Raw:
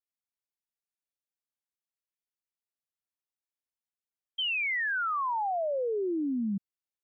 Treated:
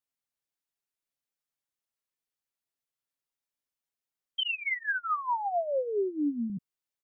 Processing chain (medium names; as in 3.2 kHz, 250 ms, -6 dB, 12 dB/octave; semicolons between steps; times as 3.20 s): comb 7.3 ms, depth 49%; 4.43–6.50 s: lamp-driven phase shifter 4.9 Hz; trim +1 dB